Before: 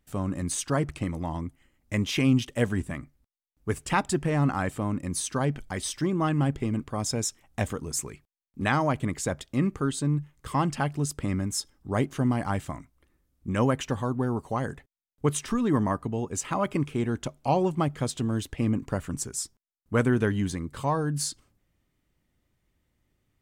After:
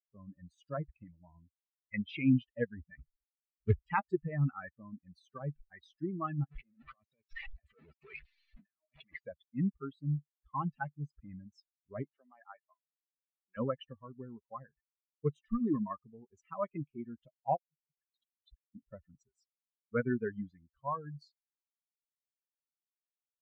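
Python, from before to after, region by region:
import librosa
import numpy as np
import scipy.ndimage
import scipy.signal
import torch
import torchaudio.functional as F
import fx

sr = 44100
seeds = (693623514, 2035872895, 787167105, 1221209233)

y = fx.chain(x, sr, fx.tilt_eq(slope=-2.5),
    fx.quant_companded(bits=4), at=(2.98, 3.82))
y = fx.chain(y, sr, fx.zero_step(step_db=-25.5),
    fx.low_shelf(hz=330.0, db=-8.5),
    fx.over_compress(threshold_db=-33.0, ratio=-0.5), at=(6.44, 9.25))
y = fx.chain(y, sr, fx.highpass(hz=490.0, slope=12),
    fx.high_shelf(hz=8000.0, db=-10.5), at=(12.13, 13.57))
y = fx.chain(y, sr, fx.over_compress(threshold_db=-36.0, ratio=-1.0),
    fx.dispersion(late='highs', ms=52.0, hz=1100.0),
    fx.power_curve(exponent=2.0), at=(17.56, 18.75))
y = fx.bin_expand(y, sr, power=3.0)
y = scipy.signal.sosfilt(scipy.signal.butter(4, 2500.0, 'lowpass', fs=sr, output='sos'), y)
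y = y * librosa.db_to_amplitude(-1.5)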